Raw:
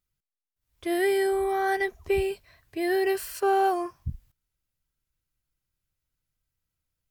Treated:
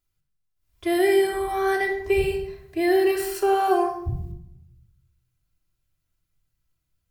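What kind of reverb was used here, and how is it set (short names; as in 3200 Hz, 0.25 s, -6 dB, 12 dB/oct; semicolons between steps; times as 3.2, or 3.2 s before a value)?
shoebox room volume 2200 m³, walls furnished, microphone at 3.1 m; gain +1 dB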